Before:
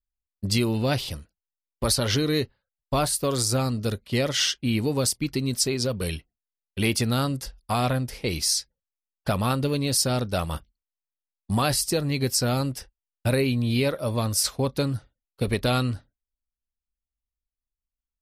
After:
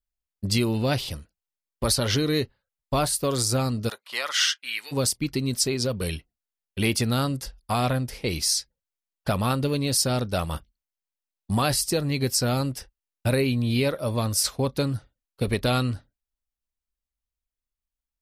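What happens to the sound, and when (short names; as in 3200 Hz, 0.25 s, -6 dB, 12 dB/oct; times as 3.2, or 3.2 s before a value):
3.88–4.91 resonant high-pass 860 Hz -> 1900 Hz, resonance Q 2.3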